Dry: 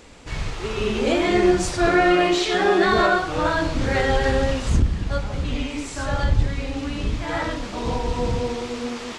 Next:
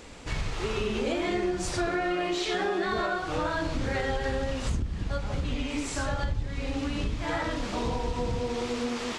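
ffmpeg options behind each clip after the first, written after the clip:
-af "acompressor=threshold=-26dB:ratio=6"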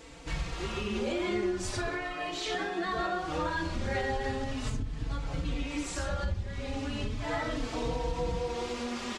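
-filter_complex "[0:a]asplit=2[a][b];[b]adelay=4,afreqshift=0.38[c];[a][c]amix=inputs=2:normalize=1"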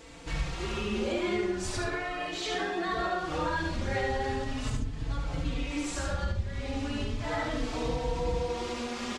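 -af "aecho=1:1:73:0.562"

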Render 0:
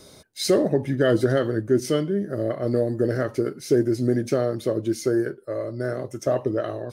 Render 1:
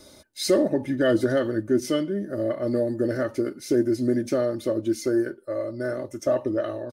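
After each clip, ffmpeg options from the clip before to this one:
-af "aecho=1:1:3.4:0.54,volume=-2.5dB"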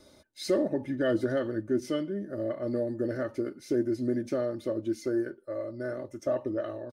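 -af "highshelf=f=5.1k:g=-8,volume=-6dB"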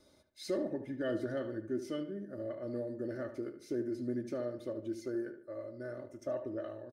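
-filter_complex "[0:a]asplit=2[a][b];[b]adelay=74,lowpass=f=2.9k:p=1,volume=-10dB,asplit=2[c][d];[d]adelay=74,lowpass=f=2.9k:p=1,volume=0.41,asplit=2[e][f];[f]adelay=74,lowpass=f=2.9k:p=1,volume=0.41,asplit=2[g][h];[h]adelay=74,lowpass=f=2.9k:p=1,volume=0.41[i];[a][c][e][g][i]amix=inputs=5:normalize=0,volume=-8.5dB"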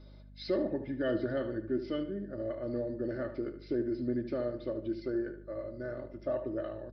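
-af "aeval=exprs='val(0)+0.00178*(sin(2*PI*50*n/s)+sin(2*PI*2*50*n/s)/2+sin(2*PI*3*50*n/s)/3+sin(2*PI*4*50*n/s)/4+sin(2*PI*5*50*n/s)/5)':c=same,aresample=11025,aresample=44100,volume=3.5dB"

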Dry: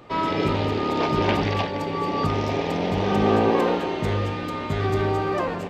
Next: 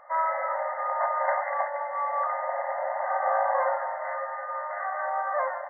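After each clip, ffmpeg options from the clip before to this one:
-af "afftfilt=real='re*between(b*sr/4096,520,2100)':imag='im*between(b*sr/4096,520,2100)':win_size=4096:overlap=0.75"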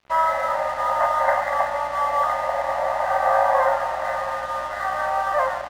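-af "aeval=exprs='val(0)+0.00158*(sin(2*PI*60*n/s)+sin(2*PI*2*60*n/s)/2+sin(2*PI*3*60*n/s)/3+sin(2*PI*4*60*n/s)/4+sin(2*PI*5*60*n/s)/5)':c=same,aecho=1:1:684:0.266,aeval=exprs='sgn(val(0))*max(abs(val(0))-0.00562,0)':c=same,volume=7dB"

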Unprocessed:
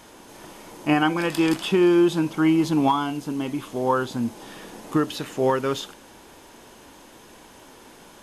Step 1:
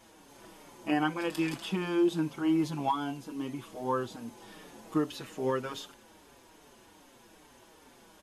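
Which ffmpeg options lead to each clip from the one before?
-filter_complex "[0:a]asplit=2[a][b];[b]adelay=5.5,afreqshift=-2.5[c];[a][c]amix=inputs=2:normalize=1,volume=-6.5dB"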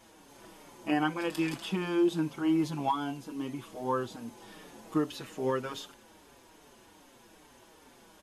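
-af anull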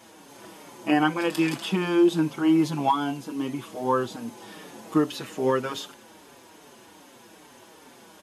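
-af "highpass=110,volume=7dB"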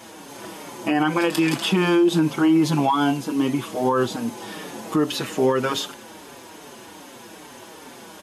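-af "alimiter=limit=-19.5dB:level=0:latency=1:release=79,volume=8.5dB"

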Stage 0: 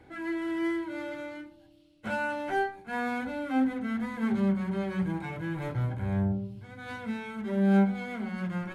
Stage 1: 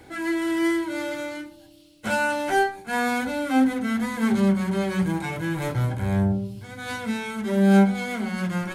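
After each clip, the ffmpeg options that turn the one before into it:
-af "bass=f=250:g=-2,treble=f=4k:g=12,volume=7.5dB"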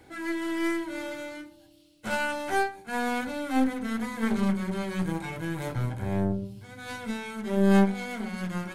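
-af "aeval=exprs='0.447*(cos(1*acos(clip(val(0)/0.447,-1,1)))-cos(1*PI/2))+0.112*(cos(2*acos(clip(val(0)/0.447,-1,1)))-cos(2*PI/2))+0.0501*(cos(3*acos(clip(val(0)/0.447,-1,1)))-cos(3*PI/2))+0.0891*(cos(4*acos(clip(val(0)/0.447,-1,1)))-cos(4*PI/2))':c=same,volume=-2.5dB"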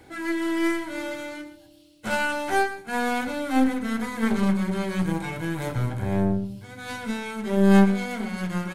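-af "aecho=1:1:118:0.211,volume=3.5dB"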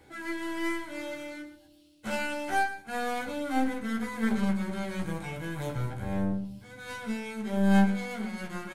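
-filter_complex "[0:a]asplit=2[a][b];[b]adelay=14,volume=-4dB[c];[a][c]amix=inputs=2:normalize=0,volume=-7dB"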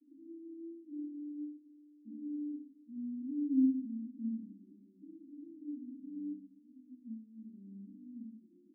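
-af "asuperpass=centerf=270:order=8:qfactor=3.7,volume=2dB"

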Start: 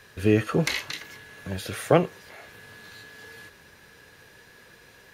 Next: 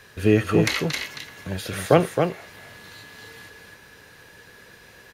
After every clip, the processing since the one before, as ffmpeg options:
-af "aecho=1:1:268:0.531,volume=2.5dB"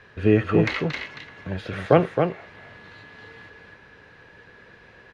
-af "lowpass=2.6k"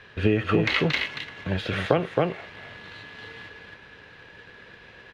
-filter_complex "[0:a]asplit=2[a][b];[b]aeval=exprs='sgn(val(0))*max(abs(val(0))-0.00562,0)':c=same,volume=-7dB[c];[a][c]amix=inputs=2:normalize=0,acompressor=threshold=-17dB:ratio=10,equalizer=f=3.2k:t=o:w=1:g=7"

